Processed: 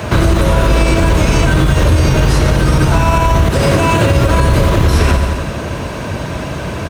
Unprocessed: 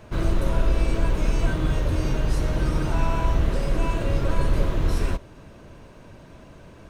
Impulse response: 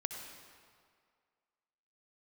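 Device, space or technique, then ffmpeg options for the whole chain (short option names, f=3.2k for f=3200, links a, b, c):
mastering chain: -filter_complex "[0:a]asettb=1/sr,asplit=3[a][b][c];[a]atrim=end=3.484[d];[b]atrim=start=3.48:end=4.16,asetpts=PTS-STARTPTS,afade=t=in:d=0.004:c=qsin,afade=t=out:st=0.676:d=0.004:c=qsin,highpass=f=77:w=0.5412,highpass=f=77:w=1.3066[e];[c]atrim=start=4.156[f];[d][e]acrossfade=d=0.004:c1=hsin:c2=qsin[g];[g][f]acrossfade=d=0.004:c1=qsin:c2=hsin,highpass=f=53:w=0.5412,highpass=f=53:w=1.3066,equalizer=f=310:t=o:w=2.3:g=-3.5,aecho=1:1:88|176|264|352|440:0.282|0.138|0.0677|0.0332|0.0162,acrossover=split=91|6500[h][i][j];[h]acompressor=threshold=-32dB:ratio=4[k];[i]acompressor=threshold=-32dB:ratio=4[l];[j]acompressor=threshold=-53dB:ratio=4[m];[k][l][m]amix=inputs=3:normalize=0,acompressor=threshold=-35dB:ratio=2,alimiter=level_in=28dB:limit=-1dB:release=50:level=0:latency=1,volume=-1dB"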